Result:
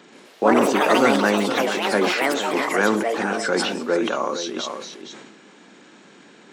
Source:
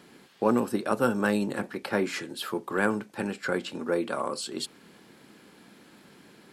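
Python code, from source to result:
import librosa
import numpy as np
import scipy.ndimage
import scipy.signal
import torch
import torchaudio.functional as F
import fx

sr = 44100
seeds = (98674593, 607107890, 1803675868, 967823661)

y = fx.freq_compress(x, sr, knee_hz=3100.0, ratio=1.5)
y = scipy.signal.sosfilt(scipy.signal.butter(2, 220.0, 'highpass', fs=sr, output='sos'), y)
y = y + 10.0 ** (-10.5 / 20.0) * np.pad(y, (int(463 * sr / 1000.0), 0))[:len(y)]
y = fx.echo_pitch(y, sr, ms=126, semitones=5, count=3, db_per_echo=-3.0)
y = fx.sustainer(y, sr, db_per_s=40.0)
y = y * librosa.db_to_amplitude(6.0)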